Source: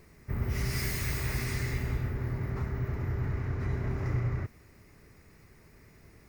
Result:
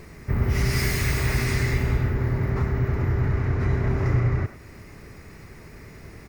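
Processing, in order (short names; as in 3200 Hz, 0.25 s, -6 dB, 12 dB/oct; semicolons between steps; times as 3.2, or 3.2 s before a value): in parallel at -1 dB: compressor, threshold -43 dBFS, peak gain reduction 16.5 dB; on the sum: high shelf 9000 Hz -6.5 dB; speakerphone echo 0.1 s, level -11 dB; gain +7.5 dB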